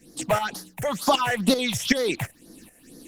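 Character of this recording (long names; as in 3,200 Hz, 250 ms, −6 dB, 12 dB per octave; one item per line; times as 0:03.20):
phaser sweep stages 6, 2.1 Hz, lowest notch 270–2,600 Hz
tremolo saw up 2.6 Hz, depth 70%
Opus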